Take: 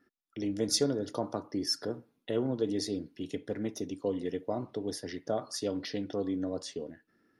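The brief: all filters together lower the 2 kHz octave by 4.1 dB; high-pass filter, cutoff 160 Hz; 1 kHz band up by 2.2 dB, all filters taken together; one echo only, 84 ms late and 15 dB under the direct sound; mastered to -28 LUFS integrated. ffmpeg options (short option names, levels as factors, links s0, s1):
-af "highpass=160,equalizer=f=1000:t=o:g=4.5,equalizer=f=2000:t=o:g=-6.5,aecho=1:1:84:0.178,volume=2"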